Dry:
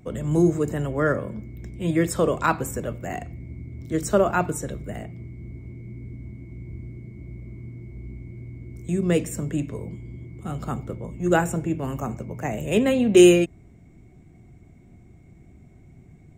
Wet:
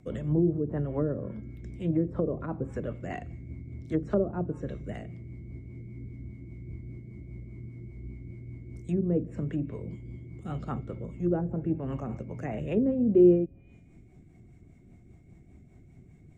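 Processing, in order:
tuned comb filter 270 Hz, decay 1 s, mix 40%
treble cut that deepens with the level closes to 460 Hz, closed at −23 dBFS
rotating-speaker cabinet horn 5 Hz
level +1.5 dB

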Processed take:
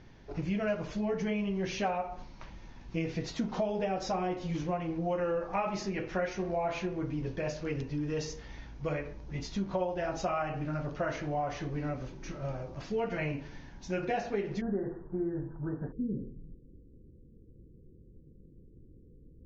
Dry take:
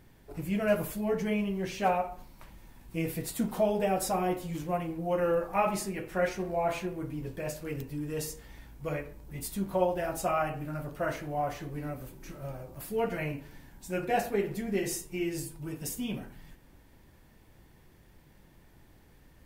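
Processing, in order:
downward compressor 4 to 1, threshold −33 dBFS, peak gain reduction 11 dB
Butterworth low-pass 6,500 Hz 96 dB per octave, from 0:14.60 1,700 Hz, from 0:15.91 510 Hz
level +3.5 dB

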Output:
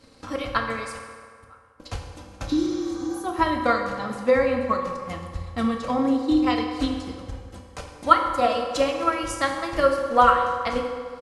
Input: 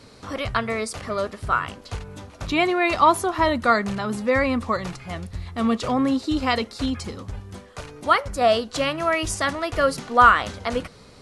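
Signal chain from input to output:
0:00.95–0:01.80: gate with flip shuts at −24 dBFS, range −29 dB
comb filter 3.8 ms, depth 44%
transient designer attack +8 dB, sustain −6 dB
0:02.52–0:03.17: healed spectral selection 460–7,300 Hz both
convolution reverb RT60 2.0 s, pre-delay 3 ms, DRR 2 dB
level −7.5 dB

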